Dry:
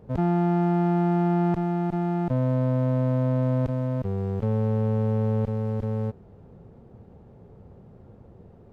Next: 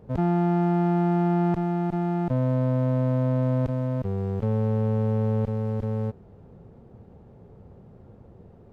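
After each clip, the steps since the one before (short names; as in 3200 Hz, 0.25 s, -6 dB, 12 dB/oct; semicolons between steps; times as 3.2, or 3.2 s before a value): nothing audible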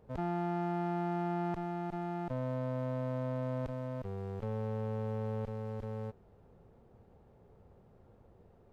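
bell 160 Hz -8.5 dB 2.8 oct; gain -6 dB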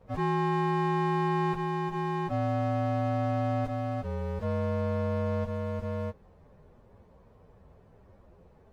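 inharmonic rescaling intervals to 117%; gain +7.5 dB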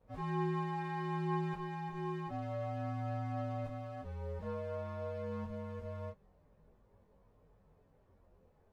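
chorus voices 4, 0.28 Hz, delay 22 ms, depth 3.8 ms; gain -7.5 dB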